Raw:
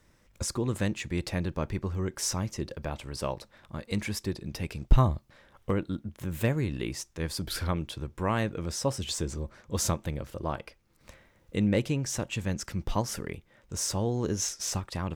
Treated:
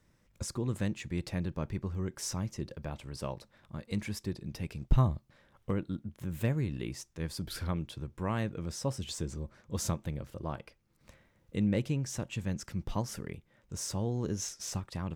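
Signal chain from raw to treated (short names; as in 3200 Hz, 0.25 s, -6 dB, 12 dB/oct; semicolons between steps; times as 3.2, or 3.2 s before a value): bell 150 Hz +5.5 dB 1.6 oct; gain -7 dB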